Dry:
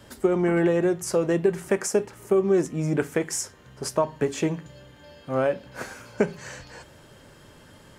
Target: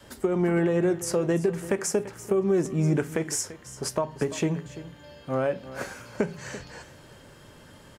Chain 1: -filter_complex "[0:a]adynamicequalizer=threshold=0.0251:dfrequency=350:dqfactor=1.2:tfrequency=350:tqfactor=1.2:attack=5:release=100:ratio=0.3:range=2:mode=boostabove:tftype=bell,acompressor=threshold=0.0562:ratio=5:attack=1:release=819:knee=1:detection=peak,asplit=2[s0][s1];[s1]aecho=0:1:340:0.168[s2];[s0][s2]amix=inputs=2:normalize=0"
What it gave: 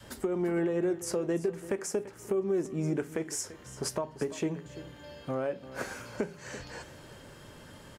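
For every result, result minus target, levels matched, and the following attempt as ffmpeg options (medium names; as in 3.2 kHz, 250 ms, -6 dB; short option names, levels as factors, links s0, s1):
compression: peak gain reduction +8.5 dB; 125 Hz band -3.0 dB
-filter_complex "[0:a]adynamicequalizer=threshold=0.0251:dfrequency=350:dqfactor=1.2:tfrequency=350:tqfactor=1.2:attack=5:release=100:ratio=0.3:range=2:mode=boostabove:tftype=bell,acompressor=threshold=0.15:ratio=5:attack=1:release=819:knee=1:detection=peak,asplit=2[s0][s1];[s1]aecho=0:1:340:0.168[s2];[s0][s2]amix=inputs=2:normalize=0"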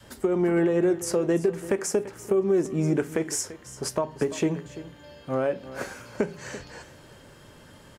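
125 Hz band -3.5 dB
-filter_complex "[0:a]adynamicequalizer=threshold=0.0251:dfrequency=140:dqfactor=1.2:tfrequency=140:tqfactor=1.2:attack=5:release=100:ratio=0.3:range=2:mode=boostabove:tftype=bell,acompressor=threshold=0.15:ratio=5:attack=1:release=819:knee=1:detection=peak,asplit=2[s0][s1];[s1]aecho=0:1:340:0.168[s2];[s0][s2]amix=inputs=2:normalize=0"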